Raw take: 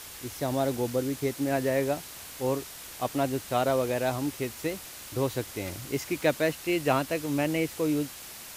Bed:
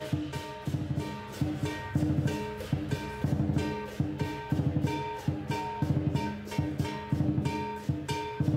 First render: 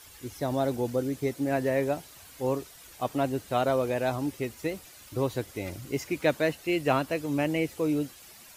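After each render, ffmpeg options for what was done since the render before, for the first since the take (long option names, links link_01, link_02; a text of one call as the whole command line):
ffmpeg -i in.wav -af "afftdn=noise_reduction=10:noise_floor=-44" out.wav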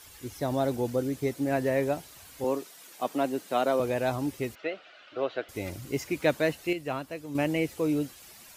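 ffmpeg -i in.wav -filter_complex "[0:a]asettb=1/sr,asplit=3[link_01][link_02][link_03];[link_01]atrim=end=2.444[link_04];[link_02]atrim=start=2.44:end=3.8,asetpts=PTS-STARTPTS,afade=type=in:duration=0.004:curve=qsin,afade=type=out:start_time=1.356:duration=0.004:curve=qsin,highpass=frequency=190:width=0.5412,highpass=frequency=190:width=1.3066[link_05];[link_03]atrim=start=3.796[link_06];[link_04][link_05]acrossfade=duration=0.004:curve1=hsin:curve2=qsin[link_07];[link_07][link_06]acrossfade=duration=0.004:curve1=qsin:curve2=hsin,asettb=1/sr,asplit=3[link_08][link_09][link_10];[link_08]atrim=end=4.554[link_11];[link_09]atrim=start=4.55:end=5.49,asetpts=PTS-STARTPTS,afade=type=in:duration=0.004:curve=qsin,afade=type=out:start_time=0.936:duration=0.004:curve=qsin,highpass=430,equalizer=frequency=650:width_type=q:width=4:gain=9,equalizer=frequency=950:width_type=q:width=4:gain=-7,equalizer=frequency=1400:width_type=q:width=4:gain=10,equalizer=frequency=2900:width_type=q:width=4:gain=5,lowpass=frequency=3700:width=0.5412,lowpass=frequency=3700:width=1.3066[link_12];[link_10]atrim=start=5.486[link_13];[link_11][link_12]acrossfade=duration=0.004:curve1=hsin:curve2=qsin[link_14];[link_14][link_13]acrossfade=duration=0.004:curve1=qsin:curve2=hsin,asplit=3[link_15][link_16][link_17];[link_15]atrim=end=6.732[link_18];[link_16]atrim=start=6.728:end=7.352,asetpts=PTS-STARTPTS,volume=-8dB[link_19];[link_17]atrim=start=7.348[link_20];[link_18][link_19]acrossfade=duration=0.004:curve1=hsin:curve2=hsin[link_21];[link_21][link_20]acrossfade=duration=0.004:curve1=hsin:curve2=hsin" out.wav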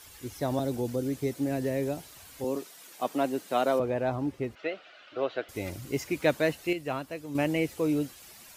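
ffmpeg -i in.wav -filter_complex "[0:a]asettb=1/sr,asplit=3[link_01][link_02][link_03];[link_01]atrim=end=0.594[link_04];[link_02]atrim=start=0.59:end=2.56,asetpts=PTS-STARTPTS,afade=type=in:duration=0.004:curve=qsin,afade=type=out:start_time=1.966:duration=0.004:curve=qsin,acrossover=split=480|3000[link_05][link_06][link_07];[link_06]acompressor=threshold=-38dB:ratio=6:attack=3.2:release=140:knee=2.83:detection=peak[link_08];[link_05][link_08][link_07]amix=inputs=3:normalize=0[link_09];[link_03]atrim=start=2.556[link_10];[link_04][link_09]acrossfade=duration=0.004:curve1=hsin:curve2=qsin[link_11];[link_11][link_10]acrossfade=duration=0.004:curve1=qsin:curve2=hsin,asplit=3[link_12][link_13][link_14];[link_12]afade=type=out:start_time=3.78:duration=0.02[link_15];[link_13]lowpass=frequency=1400:poles=1,afade=type=in:start_time=3.78:duration=0.02,afade=type=out:start_time=4.55:duration=0.02[link_16];[link_14]afade=type=in:start_time=4.55:duration=0.02[link_17];[link_15][link_16][link_17]amix=inputs=3:normalize=0" out.wav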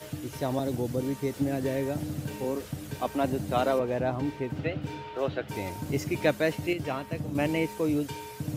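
ffmpeg -i in.wav -i bed.wav -filter_complex "[1:a]volume=-6dB[link_01];[0:a][link_01]amix=inputs=2:normalize=0" out.wav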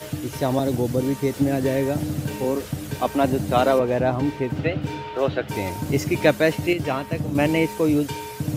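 ffmpeg -i in.wav -af "volume=7.5dB" out.wav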